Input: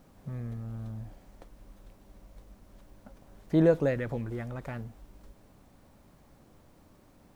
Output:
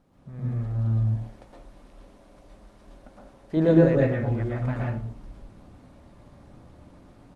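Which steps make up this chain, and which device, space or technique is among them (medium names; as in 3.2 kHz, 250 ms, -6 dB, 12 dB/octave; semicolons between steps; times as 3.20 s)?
1.03–3.57 s: tone controls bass -7 dB, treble +2 dB; distance through air 50 m; speakerphone in a meeting room (reverberation RT60 0.50 s, pre-delay 109 ms, DRR -3.5 dB; speakerphone echo 120 ms, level -30 dB; level rider gain up to 8.5 dB; trim -5 dB; Opus 32 kbps 48 kHz)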